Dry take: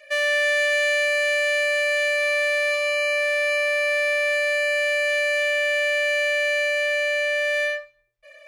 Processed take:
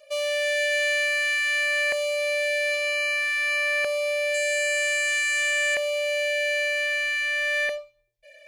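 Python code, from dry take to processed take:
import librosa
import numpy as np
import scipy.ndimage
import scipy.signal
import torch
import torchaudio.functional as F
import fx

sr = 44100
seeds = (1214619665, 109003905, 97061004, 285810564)

y = fx.peak_eq(x, sr, hz=7700.0, db=15.0, octaves=0.46, at=(4.34, 5.75))
y = fx.filter_lfo_notch(y, sr, shape='saw_down', hz=0.52, low_hz=380.0, high_hz=2000.0, q=0.79)
y = fx.low_shelf(y, sr, hz=170.0, db=8.5, at=(6.94, 7.78))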